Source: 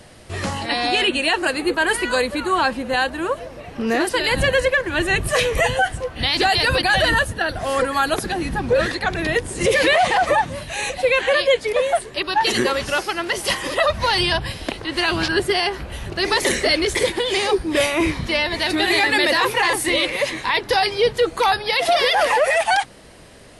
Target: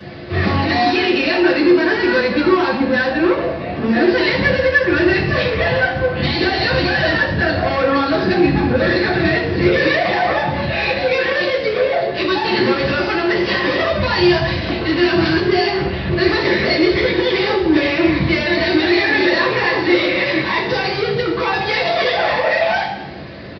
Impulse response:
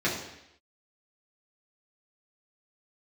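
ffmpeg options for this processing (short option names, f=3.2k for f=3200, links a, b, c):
-filter_complex "[0:a]acompressor=threshold=-19dB:ratio=6,aresample=11025,asoftclip=type=tanh:threshold=-25.5dB,aresample=44100[a];[1:a]atrim=start_sample=2205[b];[a][b]afir=irnorm=-1:irlink=0"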